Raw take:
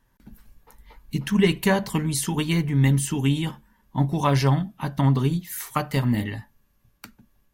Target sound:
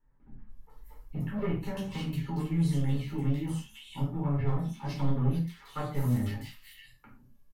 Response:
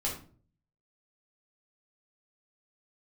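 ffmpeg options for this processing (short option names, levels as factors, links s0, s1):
-filter_complex "[0:a]acrossover=split=3900[s0][s1];[s1]acompressor=threshold=0.00708:ratio=4:attack=1:release=60[s2];[s0][s2]amix=inputs=2:normalize=0,highshelf=f=7700:g=5,asettb=1/sr,asplit=3[s3][s4][s5];[s3]atrim=end=1.514[s6];[s4]atrim=start=1.51:end=4.39,asetpts=PTS-STARTPTS,afade=t=in:d=0.004:c=qsin,afade=t=out:st=2.876:d=0.004:c=qsin,acrossover=split=180|360[s7][s8][s9];[s7]acompressor=threshold=0.0708:ratio=4[s10];[s8]acompressor=threshold=0.0355:ratio=4[s11];[s9]acompressor=threshold=0.0224:ratio=4[s12];[s10][s11][s12]amix=inputs=3:normalize=0[s13];[s5]atrim=start=4.386[s14];[s6][s13]acrossfade=d=0.004:c1=hsin:c2=qsin[s15];[s15][s14]acrossfade=d=0.004:c1=qsin:c2=hsin,volume=10.6,asoftclip=hard,volume=0.0944,flanger=delay=6.6:depth=1.3:regen=-47:speed=1.2:shape=sinusoidal,acrossover=split=2200[s16][s17];[s17]adelay=500[s18];[s16][s18]amix=inputs=2:normalize=0[s19];[1:a]atrim=start_sample=2205,atrim=end_sample=6174[s20];[s19][s20]afir=irnorm=-1:irlink=0,volume=0.376"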